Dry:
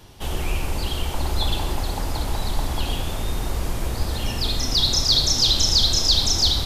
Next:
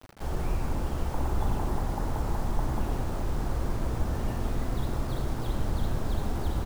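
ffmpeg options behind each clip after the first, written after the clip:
-filter_complex "[0:a]lowpass=f=1.7k:w=0.5412,lowpass=f=1.7k:w=1.3066,acrusher=bits=6:mix=0:aa=0.000001,asplit=2[a][b];[b]asplit=7[c][d][e][f][g][h][i];[c]adelay=89,afreqshift=100,volume=-14dB[j];[d]adelay=178,afreqshift=200,volume=-18dB[k];[e]adelay=267,afreqshift=300,volume=-22dB[l];[f]adelay=356,afreqshift=400,volume=-26dB[m];[g]adelay=445,afreqshift=500,volume=-30.1dB[n];[h]adelay=534,afreqshift=600,volume=-34.1dB[o];[i]adelay=623,afreqshift=700,volume=-38.1dB[p];[j][k][l][m][n][o][p]amix=inputs=7:normalize=0[q];[a][q]amix=inputs=2:normalize=0,volume=-4.5dB"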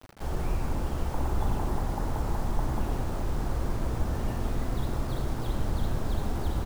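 -af anull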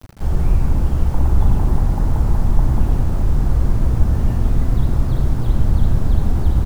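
-filter_complex "[0:a]acrossover=split=3100[a][b];[b]acompressor=threshold=-55dB:ratio=4:attack=1:release=60[c];[a][c]amix=inputs=2:normalize=0,bass=f=250:g=11,treble=f=4k:g=7,volume=3.5dB"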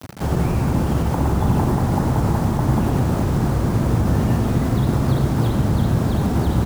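-filter_complex "[0:a]asplit=2[a][b];[b]alimiter=limit=-12dB:level=0:latency=1:release=72,volume=0dB[c];[a][c]amix=inputs=2:normalize=0,highpass=130,volume=2.5dB"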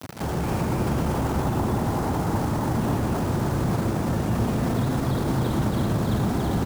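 -filter_complex "[0:a]lowshelf=f=100:g=-8,alimiter=limit=-19.5dB:level=0:latency=1:release=15,asplit=2[a][b];[b]aecho=0:1:116.6|279.9:0.398|0.794[c];[a][c]amix=inputs=2:normalize=0"

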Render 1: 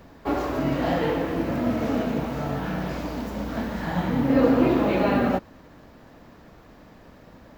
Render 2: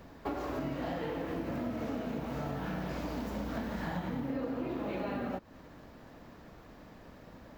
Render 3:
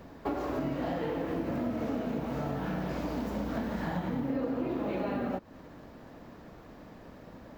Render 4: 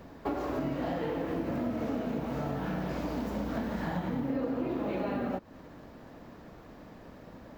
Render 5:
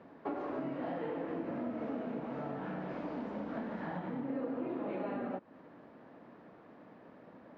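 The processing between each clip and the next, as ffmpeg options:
-af "acompressor=threshold=-29dB:ratio=10,volume=-3.5dB"
-af "equalizer=f=340:w=0.33:g=4"
-af anull
-af "highpass=190,lowpass=2.4k,volume=-4.5dB"

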